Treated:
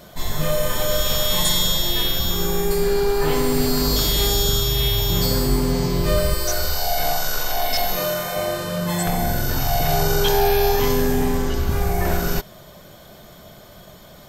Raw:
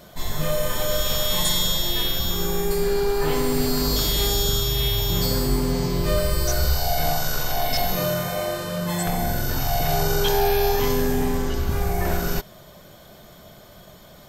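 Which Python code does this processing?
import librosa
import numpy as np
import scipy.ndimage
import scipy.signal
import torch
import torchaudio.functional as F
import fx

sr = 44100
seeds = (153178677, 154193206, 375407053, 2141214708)

y = fx.peak_eq(x, sr, hz=100.0, db=-12.0, octaves=2.3, at=(6.34, 8.36))
y = F.gain(torch.from_numpy(y), 2.5).numpy()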